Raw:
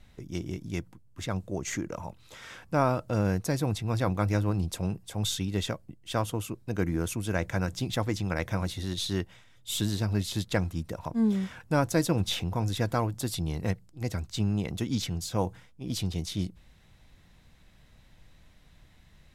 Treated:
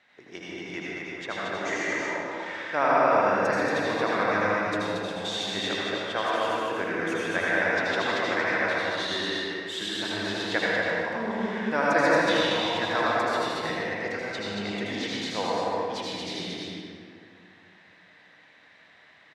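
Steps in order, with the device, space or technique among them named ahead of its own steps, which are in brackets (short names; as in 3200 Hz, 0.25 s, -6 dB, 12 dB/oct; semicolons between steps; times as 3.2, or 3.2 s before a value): station announcement (BPF 470–4000 Hz; bell 1800 Hz +8.5 dB 0.48 oct; loudspeakers at several distances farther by 27 m -9 dB, 79 m -3 dB; reverb RT60 2.2 s, pre-delay 74 ms, DRR -5.5 dB)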